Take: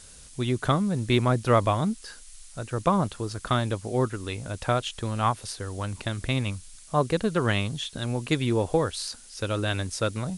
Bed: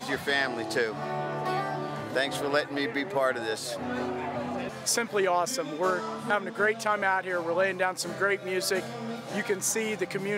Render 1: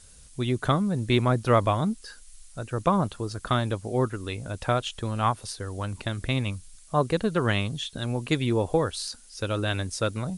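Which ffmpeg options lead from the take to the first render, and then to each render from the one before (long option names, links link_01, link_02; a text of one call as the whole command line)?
ffmpeg -i in.wav -af "afftdn=noise_reduction=6:noise_floor=-48" out.wav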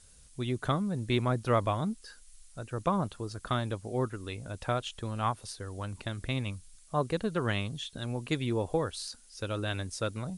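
ffmpeg -i in.wav -af "volume=-6dB" out.wav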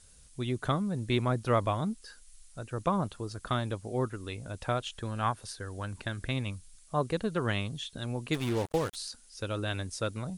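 ffmpeg -i in.wav -filter_complex "[0:a]asettb=1/sr,asplit=3[link_01][link_02][link_03];[link_01]atrim=end=4.924[link_04];[link_02]atrim=start=4.92:end=6.31,asetpts=PTS-STARTPTS,afade=type=in:duration=0.004:curve=qsin,afade=type=out:start_time=1.386:duration=0.004:curve=qsin,equalizer=frequency=1600:width=5.6:gain=7.5[link_05];[link_03]atrim=start=6.306[link_06];[link_04][link_05]acrossfade=duration=0.004:curve1=hsin:curve2=qsin[link_07];[link_07][link_06]acrossfade=duration=0.004:curve1=qsin:curve2=hsin,asplit=3[link_08][link_09][link_10];[link_08]afade=type=out:start_time=8.33:duration=0.02[link_11];[link_09]acrusher=bits=5:mix=0:aa=0.5,afade=type=in:start_time=8.33:duration=0.02,afade=type=out:start_time=8.94:duration=0.02[link_12];[link_10]afade=type=in:start_time=8.94:duration=0.02[link_13];[link_11][link_12][link_13]amix=inputs=3:normalize=0" out.wav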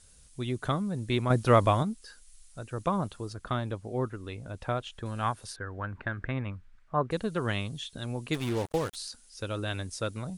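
ffmpeg -i in.wav -filter_complex "[0:a]asettb=1/sr,asplit=3[link_01][link_02][link_03];[link_01]atrim=end=1.304[link_04];[link_02]atrim=start=1.3:end=1.83,asetpts=PTS-STARTPTS,afade=type=in:duration=0.004:curve=qsin,afade=type=out:start_time=0.526:duration=0.004:curve=qsin,acontrast=50[link_05];[link_03]atrim=start=1.826[link_06];[link_04][link_05]acrossfade=duration=0.004:curve1=hsin:curve2=qsin[link_07];[link_07][link_06]acrossfade=duration=0.004:curve1=qsin:curve2=hsin,asettb=1/sr,asplit=3[link_08][link_09][link_10];[link_08]atrim=end=3.334[link_11];[link_09]atrim=start=3.33:end=5.06,asetpts=PTS-STARTPTS,afade=type=in:duration=0.004:curve=qsin,afade=type=out:start_time=1.726:duration=0.004:curve=qsin,highshelf=frequency=4200:gain=-10[link_12];[link_10]atrim=start=5.056[link_13];[link_11][link_12]acrossfade=duration=0.004:curve1=hsin:curve2=qsin[link_14];[link_14][link_13]acrossfade=duration=0.004:curve1=qsin:curve2=hsin,asettb=1/sr,asplit=3[link_15][link_16][link_17];[link_15]atrim=end=5.564[link_18];[link_16]atrim=start=5.56:end=7.11,asetpts=PTS-STARTPTS,afade=type=in:duration=0.004:curve=qsin,afade=type=out:start_time=1.546:duration=0.004:curve=qsin,lowpass=frequency=1600:width_type=q:width=1.9[link_19];[link_17]atrim=start=7.106[link_20];[link_18][link_19]acrossfade=duration=0.004:curve1=hsin:curve2=qsin[link_21];[link_21][link_20]acrossfade=duration=0.004:curve1=qsin:curve2=hsin" out.wav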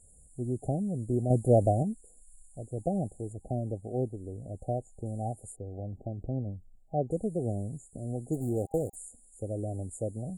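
ffmpeg -i in.wav -af "afftfilt=real='re*(1-between(b*sr/4096,800,6800))':imag='im*(1-between(b*sr/4096,800,6800))':win_size=4096:overlap=0.75" out.wav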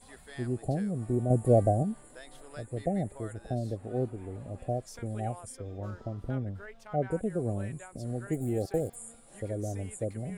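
ffmpeg -i in.wav -i bed.wav -filter_complex "[1:a]volume=-22dB[link_01];[0:a][link_01]amix=inputs=2:normalize=0" out.wav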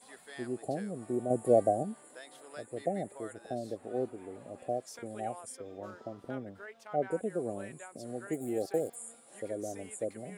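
ffmpeg -i in.wav -af "highpass=290" out.wav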